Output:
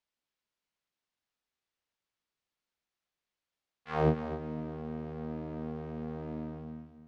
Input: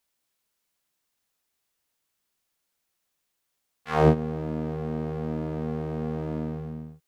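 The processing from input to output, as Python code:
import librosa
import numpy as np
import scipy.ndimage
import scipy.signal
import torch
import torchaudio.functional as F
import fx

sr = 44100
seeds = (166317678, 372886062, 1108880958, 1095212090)

y = scipy.signal.sosfilt(scipy.signal.butter(2, 4800.0, 'lowpass', fs=sr, output='sos'), x)
y = fx.echo_feedback(y, sr, ms=254, feedback_pct=29, wet_db=-10)
y = F.gain(torch.from_numpy(y), -8.0).numpy()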